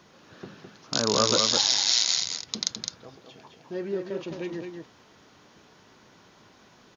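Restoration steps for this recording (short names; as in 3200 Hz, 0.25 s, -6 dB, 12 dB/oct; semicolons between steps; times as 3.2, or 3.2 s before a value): inverse comb 0.211 s -5.5 dB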